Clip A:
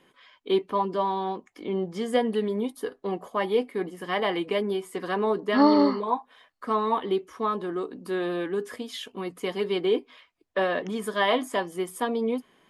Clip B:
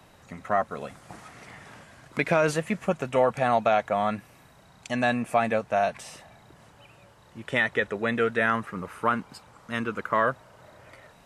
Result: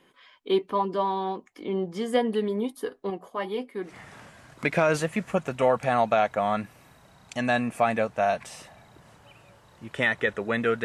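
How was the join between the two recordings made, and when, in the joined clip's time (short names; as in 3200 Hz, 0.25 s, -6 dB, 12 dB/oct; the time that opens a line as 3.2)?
clip A
3.1–3.98 flange 1.8 Hz, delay 4.6 ms, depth 2.5 ms, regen -62%
3.89 switch to clip B from 1.43 s, crossfade 0.18 s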